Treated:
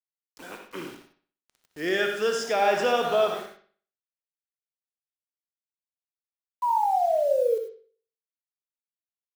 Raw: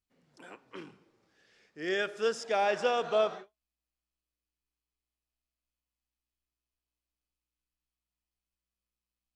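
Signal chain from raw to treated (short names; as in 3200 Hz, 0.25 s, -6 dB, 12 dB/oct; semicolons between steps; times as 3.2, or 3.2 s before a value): HPF 70 Hz 24 dB/oct; in parallel at +2 dB: limiter -27.5 dBFS, peak gain reduction 11.5 dB; on the sum: painted sound fall, 6.62–7.58, 440–1000 Hz -24 dBFS; bit-crush 8-bit; on a send: analogue delay 62 ms, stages 2048, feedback 38%, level -8.5 dB; on the sum: non-linear reverb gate 0.12 s rising, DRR 6.5 dB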